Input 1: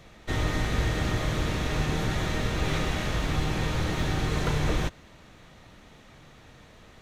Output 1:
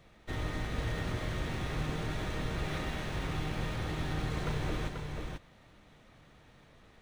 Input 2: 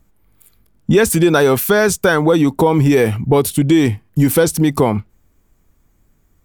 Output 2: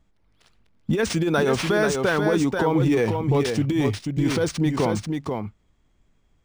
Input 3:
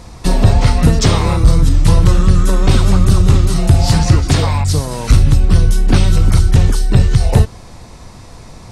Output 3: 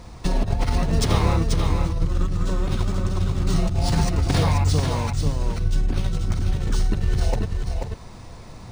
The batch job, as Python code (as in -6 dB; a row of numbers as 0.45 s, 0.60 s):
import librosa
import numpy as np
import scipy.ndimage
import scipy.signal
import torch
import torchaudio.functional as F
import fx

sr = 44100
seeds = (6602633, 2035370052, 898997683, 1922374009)

p1 = fx.over_compress(x, sr, threshold_db=-11.0, ratio=-0.5)
p2 = p1 + fx.echo_single(p1, sr, ms=487, db=-5.0, dry=0)
p3 = np.interp(np.arange(len(p2)), np.arange(len(p2))[::3], p2[::3])
y = p3 * 10.0 ** (-8.5 / 20.0)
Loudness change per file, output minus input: -8.0 LU, -8.5 LU, -11.0 LU